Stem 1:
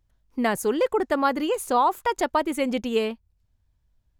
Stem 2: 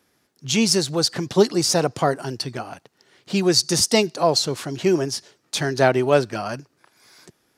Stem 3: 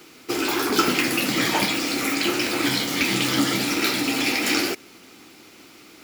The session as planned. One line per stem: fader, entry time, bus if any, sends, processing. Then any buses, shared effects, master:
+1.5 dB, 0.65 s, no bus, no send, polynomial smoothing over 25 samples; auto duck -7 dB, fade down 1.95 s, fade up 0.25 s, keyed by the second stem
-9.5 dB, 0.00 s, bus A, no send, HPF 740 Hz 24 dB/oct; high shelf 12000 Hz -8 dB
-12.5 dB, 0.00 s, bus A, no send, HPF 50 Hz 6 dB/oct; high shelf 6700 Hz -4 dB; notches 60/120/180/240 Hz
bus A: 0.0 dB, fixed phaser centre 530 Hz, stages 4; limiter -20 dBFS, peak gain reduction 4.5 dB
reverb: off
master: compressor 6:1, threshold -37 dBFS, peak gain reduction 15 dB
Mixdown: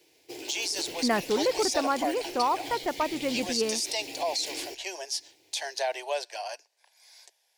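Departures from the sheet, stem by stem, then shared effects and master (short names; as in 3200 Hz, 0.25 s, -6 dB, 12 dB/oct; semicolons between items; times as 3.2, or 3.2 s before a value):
stem 2 -9.5 dB -> 0.0 dB; master: missing compressor 6:1, threshold -37 dBFS, peak gain reduction 15 dB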